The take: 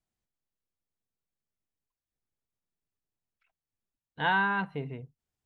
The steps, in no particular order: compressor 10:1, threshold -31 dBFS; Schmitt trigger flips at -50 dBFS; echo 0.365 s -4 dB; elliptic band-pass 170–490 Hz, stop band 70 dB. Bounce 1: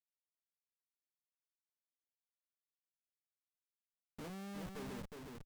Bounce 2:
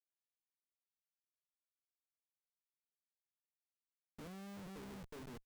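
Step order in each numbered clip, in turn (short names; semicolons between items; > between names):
elliptic band-pass > compressor > Schmitt trigger > echo; echo > compressor > elliptic band-pass > Schmitt trigger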